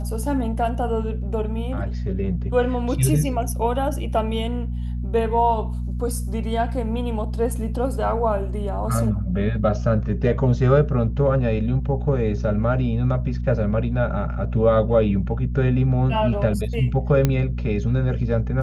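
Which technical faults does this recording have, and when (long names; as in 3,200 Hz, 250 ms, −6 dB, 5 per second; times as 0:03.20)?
mains hum 60 Hz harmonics 4 −26 dBFS
0:17.25: click −6 dBFS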